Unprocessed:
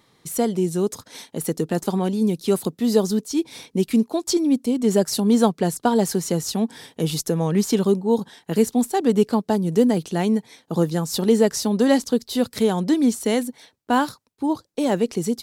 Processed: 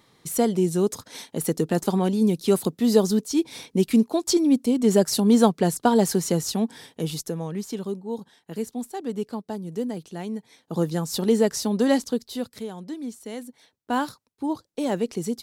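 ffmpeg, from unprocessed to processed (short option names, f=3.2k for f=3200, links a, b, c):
-af "volume=19dB,afade=t=out:st=6.26:d=1.34:silence=0.266073,afade=t=in:st=10.33:d=0.57:silence=0.375837,afade=t=out:st=11.94:d=0.72:silence=0.251189,afade=t=in:st=13.31:d=0.76:silence=0.298538"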